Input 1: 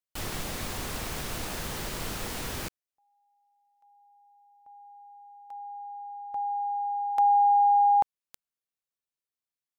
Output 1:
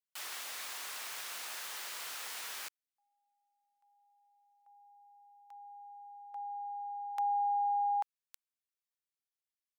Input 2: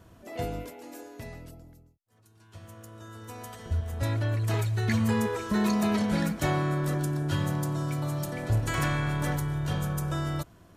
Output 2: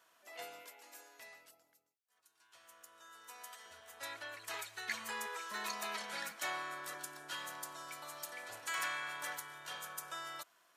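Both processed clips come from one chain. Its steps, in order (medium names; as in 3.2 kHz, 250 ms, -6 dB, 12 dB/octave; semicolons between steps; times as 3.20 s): high-pass 1.1 kHz 12 dB/octave; trim -4.5 dB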